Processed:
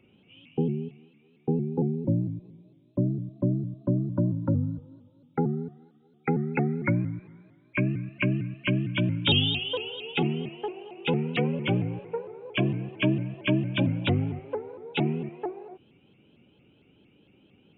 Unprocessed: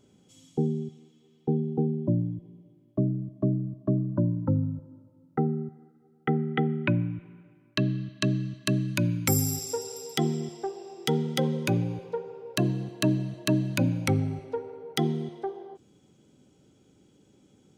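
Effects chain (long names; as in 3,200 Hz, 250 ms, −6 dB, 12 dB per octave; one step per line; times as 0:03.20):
hearing-aid frequency compression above 2,200 Hz 4 to 1
pitch modulation by a square or saw wave saw up 4.4 Hz, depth 160 cents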